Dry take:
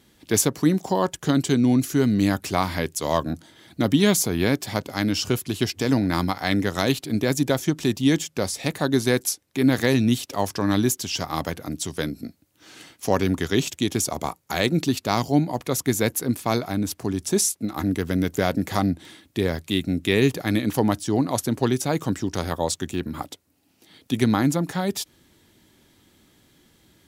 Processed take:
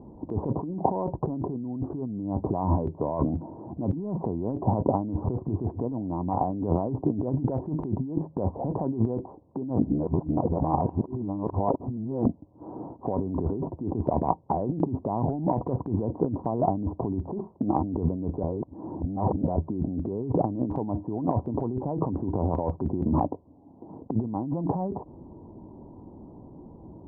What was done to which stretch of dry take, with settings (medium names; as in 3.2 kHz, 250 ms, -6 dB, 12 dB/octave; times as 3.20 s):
9.79–12.26 s: reverse
18.43–19.56 s: reverse
whole clip: Chebyshev low-pass 1 kHz, order 6; peak limiter -15 dBFS; compressor with a negative ratio -34 dBFS, ratio -1; trim +6.5 dB